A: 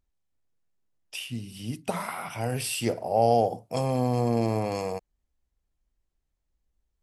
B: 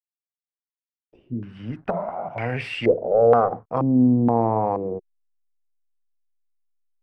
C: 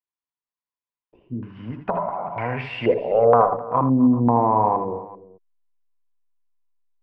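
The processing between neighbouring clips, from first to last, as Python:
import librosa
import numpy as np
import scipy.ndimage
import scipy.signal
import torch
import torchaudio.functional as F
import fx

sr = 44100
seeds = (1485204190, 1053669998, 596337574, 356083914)

y1 = fx.diode_clip(x, sr, knee_db=-19.5)
y1 = fx.backlash(y1, sr, play_db=-49.5)
y1 = fx.filter_held_lowpass(y1, sr, hz=2.1, low_hz=270.0, high_hz=2100.0)
y1 = y1 * 10.0 ** (3.0 / 20.0)
y2 = scipy.signal.sosfilt(scipy.signal.butter(2, 3300.0, 'lowpass', fs=sr, output='sos'), y1)
y2 = fx.peak_eq(y2, sr, hz=1000.0, db=12.5, octaves=0.3)
y2 = fx.echo_multitap(y2, sr, ms=(76, 83, 258, 387), db=(-10.5, -11.5, -19.5, -19.5))
y2 = y2 * 10.0 ** (-1.0 / 20.0)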